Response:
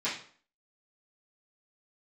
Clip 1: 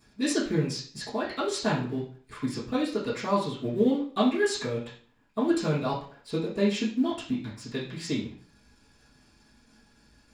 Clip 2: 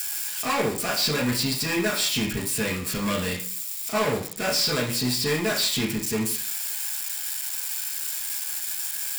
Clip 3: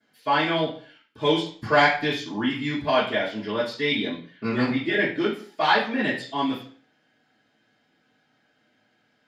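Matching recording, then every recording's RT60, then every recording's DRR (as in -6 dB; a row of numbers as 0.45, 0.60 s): 1; 0.50, 0.50, 0.50 s; -13.0, -3.0, -19.5 dB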